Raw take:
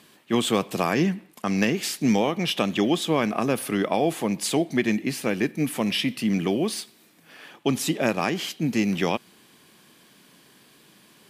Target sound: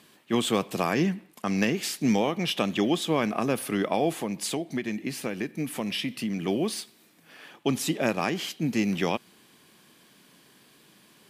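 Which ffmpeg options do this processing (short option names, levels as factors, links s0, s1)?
-filter_complex "[0:a]asettb=1/sr,asplit=3[s0][s1][s2];[s0]atrim=end=4.134[s3];[s1]atrim=start=4.13:end=6.48,asetpts=PTS-STARTPTS,afade=t=in:d=0.004:c=qsin,afade=t=out:st=2.346:d=0.004:c=qsin,acompressor=threshold=0.0631:ratio=6[s4];[s2]atrim=start=6.476[s5];[s3][s4]acrossfade=d=0.004:c1=hsin:c2=qsin[s6];[s6][s5]acrossfade=d=0.004:c1=qsin:c2=hsin,volume=0.75"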